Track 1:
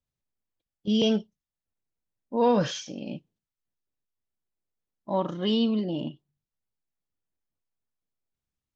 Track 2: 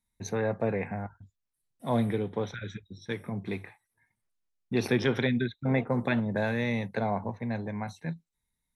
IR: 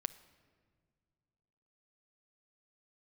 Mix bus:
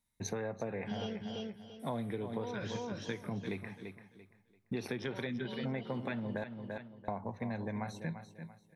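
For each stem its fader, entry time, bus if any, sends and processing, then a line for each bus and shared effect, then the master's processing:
-3.5 dB, 0.00 s, no send, echo send -14.5 dB, auto duck -10 dB, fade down 1.35 s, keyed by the second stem
-1.5 dB, 0.00 s, muted 6.44–7.08 s, send -10.5 dB, echo send -10.5 dB, none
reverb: on, pre-delay 7 ms
echo: feedback delay 340 ms, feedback 27%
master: bass shelf 70 Hz -6.5 dB; compression 12:1, threshold -34 dBFS, peak gain reduction 14.5 dB

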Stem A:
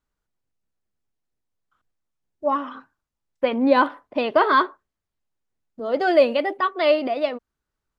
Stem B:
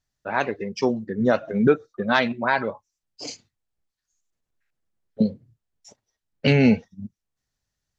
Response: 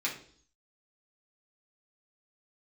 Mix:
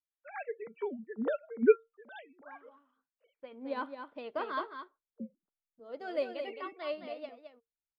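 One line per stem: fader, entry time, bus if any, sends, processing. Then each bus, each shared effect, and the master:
3.19 s -14 dB -> 3.81 s -5.5 dB, 0.00 s, no send, echo send -5.5 dB, none
+0.5 dB, 0.00 s, no send, no echo send, formants replaced by sine waves; treble shelf 2.6 kHz +6 dB; auto duck -10 dB, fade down 1.30 s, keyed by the first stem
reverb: none
echo: delay 216 ms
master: feedback comb 460 Hz, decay 0.16 s, harmonics odd, mix 60%; upward expansion 1.5:1, over -42 dBFS

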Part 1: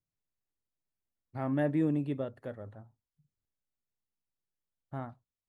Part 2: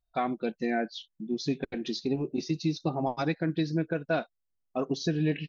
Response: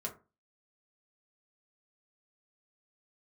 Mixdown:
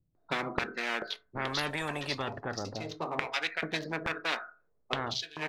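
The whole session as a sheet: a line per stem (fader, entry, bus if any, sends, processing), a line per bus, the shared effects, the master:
+2.0 dB, 0.00 s, no send, level-controlled noise filter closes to 350 Hz, open at -28 dBFS
+0.5 dB, 0.15 s, send -9.5 dB, local Wiener filter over 15 samples; treble shelf 3 kHz -11.5 dB; step-sequenced high-pass 2.3 Hz 300–5100 Hz; auto duck -14 dB, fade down 0.30 s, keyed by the first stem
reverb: on, RT60 0.30 s, pre-delay 4 ms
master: spectrum-flattening compressor 10:1

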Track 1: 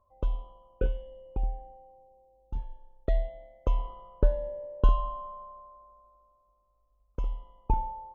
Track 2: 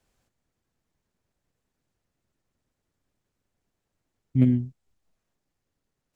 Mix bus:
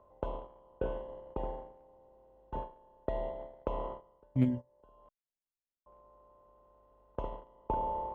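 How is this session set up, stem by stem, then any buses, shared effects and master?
-1.5 dB, 0.00 s, muted 5.09–5.86 s, no send, spectral levelling over time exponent 0.4; band-pass filter 560 Hz, Q 0.53; three bands compressed up and down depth 40%; auto duck -14 dB, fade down 0.40 s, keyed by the second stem
-4.5 dB, 0.00 s, no send, reverb removal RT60 0.56 s; bass shelf 130 Hz -3 dB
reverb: none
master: peaking EQ 190 Hz -2.5 dB 2.8 oct; gate -36 dBFS, range -20 dB

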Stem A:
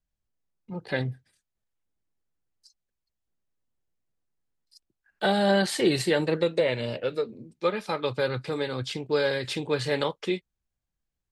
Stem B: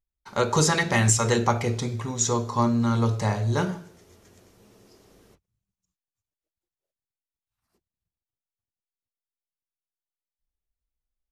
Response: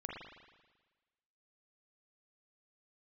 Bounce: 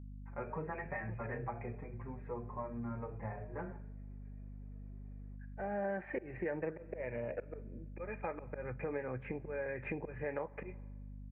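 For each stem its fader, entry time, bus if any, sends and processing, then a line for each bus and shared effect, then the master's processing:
+2.0 dB, 0.35 s, send -20 dB, slow attack 422 ms
-10.0 dB, 0.00 s, send -22 dB, endless flanger 5.2 ms +2.4 Hz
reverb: on, RT60 1.3 s, pre-delay 39 ms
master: rippled Chebyshev low-pass 2.5 kHz, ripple 6 dB; hum 50 Hz, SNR 13 dB; compression 4:1, threshold -37 dBFS, peak gain reduction 14.5 dB

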